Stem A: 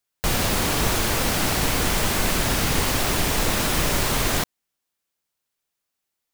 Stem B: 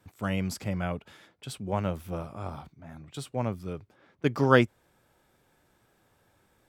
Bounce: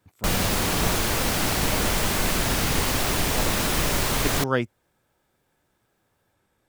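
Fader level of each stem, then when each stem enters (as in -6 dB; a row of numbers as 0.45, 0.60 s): -1.5, -4.0 dB; 0.00, 0.00 s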